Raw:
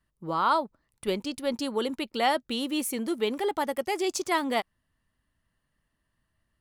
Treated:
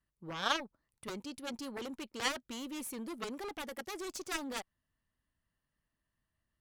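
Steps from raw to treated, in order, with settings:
harmonic generator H 3 −8 dB, 6 −37 dB, 7 −29 dB, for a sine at −12 dBFS
level −1.5 dB

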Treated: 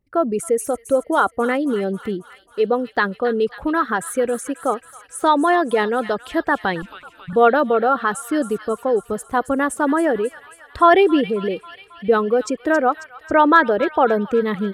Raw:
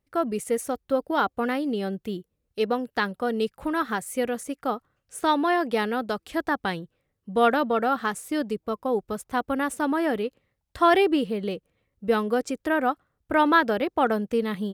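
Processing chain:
spectral envelope exaggerated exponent 1.5
delay with a high-pass on its return 271 ms, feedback 64%, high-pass 1,900 Hz, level −10 dB
0:06.82–0:07.33: frequency shifter −370 Hz
level +6.5 dB

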